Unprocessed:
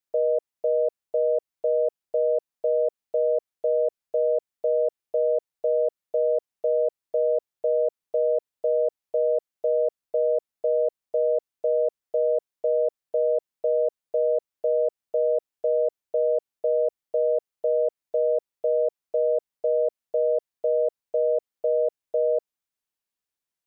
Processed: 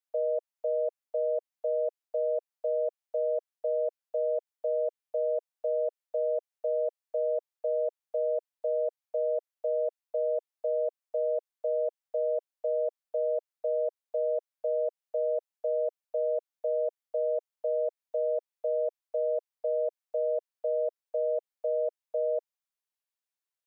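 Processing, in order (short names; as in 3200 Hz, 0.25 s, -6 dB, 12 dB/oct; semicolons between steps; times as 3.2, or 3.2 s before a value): steep high-pass 470 Hz; gain -5 dB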